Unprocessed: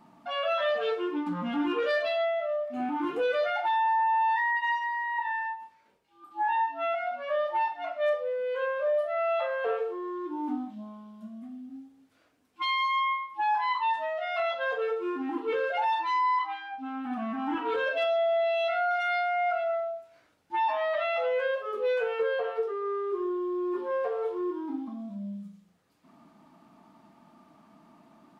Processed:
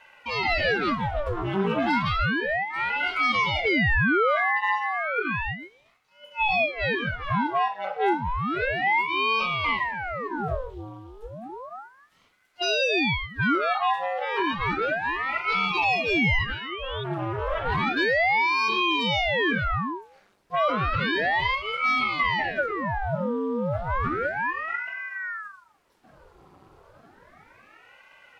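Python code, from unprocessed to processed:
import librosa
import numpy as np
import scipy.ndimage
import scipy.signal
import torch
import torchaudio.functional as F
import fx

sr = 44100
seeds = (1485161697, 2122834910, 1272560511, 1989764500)

y = fx.spec_paint(x, sr, seeds[0], shape='rise', start_s=15.04, length_s=2.0, low_hz=470.0, high_hz=3600.0, level_db=-42.0)
y = fx.ring_lfo(y, sr, carrier_hz=940.0, swing_pct=90, hz=0.32)
y = y * 10.0 ** (6.5 / 20.0)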